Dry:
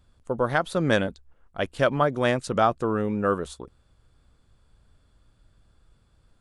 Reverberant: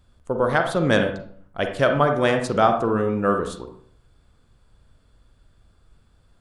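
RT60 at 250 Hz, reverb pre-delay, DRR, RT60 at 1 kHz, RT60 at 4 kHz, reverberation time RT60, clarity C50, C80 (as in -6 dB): 0.65 s, 35 ms, 5.0 dB, 0.50 s, 0.40 s, 0.55 s, 7.0 dB, 11.5 dB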